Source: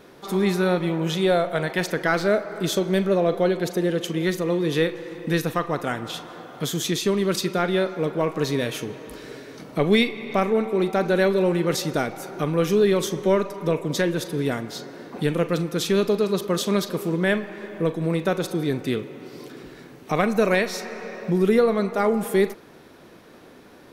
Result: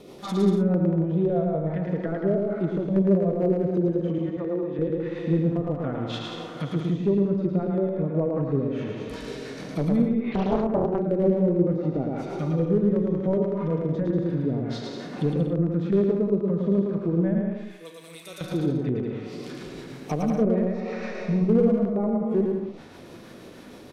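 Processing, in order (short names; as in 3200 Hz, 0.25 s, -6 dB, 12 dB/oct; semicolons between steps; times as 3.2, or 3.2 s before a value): 17.53–18.41 differentiator; treble ducked by the level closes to 540 Hz, closed at -20 dBFS; 4.18–4.79 weighting filter A; LFO notch square 2.7 Hz 400–1600 Hz; in parallel at +2.5 dB: compressor 16:1, threshold -35 dBFS, peak gain reduction 20 dB; on the sum: hard clip -13.5 dBFS, distortion -26 dB; rotary speaker horn 6.3 Hz; on a send: bouncing-ball echo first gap 0.11 s, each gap 0.7×, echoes 5; on the sum: harmonic-percussive split percussive -6 dB; 10.32–11 Doppler distortion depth 0.89 ms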